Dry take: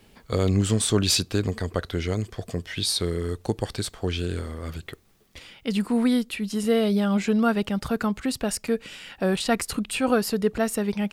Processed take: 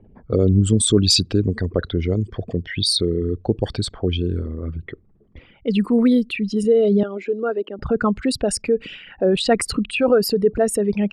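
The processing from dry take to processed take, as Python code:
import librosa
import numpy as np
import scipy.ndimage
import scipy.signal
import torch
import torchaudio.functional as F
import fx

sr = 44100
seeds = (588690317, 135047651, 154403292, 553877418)

y = fx.envelope_sharpen(x, sr, power=2.0)
y = fx.ladder_highpass(y, sr, hz=300.0, resonance_pct=50, at=(7.03, 7.79))
y = fx.env_lowpass(y, sr, base_hz=940.0, full_db=-21.5)
y = F.gain(torch.from_numpy(y), 6.0).numpy()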